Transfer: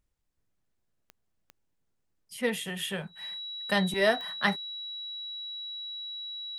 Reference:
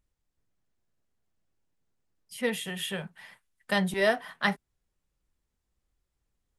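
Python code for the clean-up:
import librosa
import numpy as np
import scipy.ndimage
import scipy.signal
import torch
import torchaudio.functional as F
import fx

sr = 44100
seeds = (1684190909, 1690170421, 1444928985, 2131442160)

y = fx.fix_declick_ar(x, sr, threshold=10.0)
y = fx.notch(y, sr, hz=3900.0, q=30.0)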